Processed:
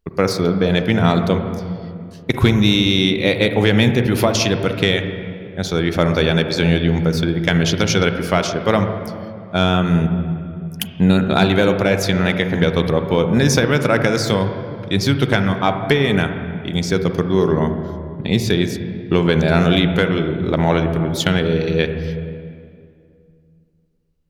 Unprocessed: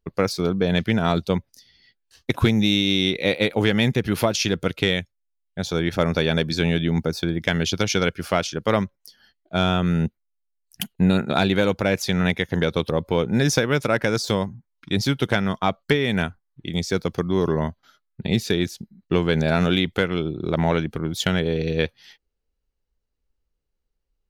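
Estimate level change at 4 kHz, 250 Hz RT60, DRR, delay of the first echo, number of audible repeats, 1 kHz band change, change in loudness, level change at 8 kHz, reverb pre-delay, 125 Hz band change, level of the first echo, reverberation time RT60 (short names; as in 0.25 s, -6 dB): +4.0 dB, 2.9 s, 7.0 dB, none, none, +5.0 dB, +5.0 dB, +4.0 dB, 35 ms, +6.0 dB, none, 2.3 s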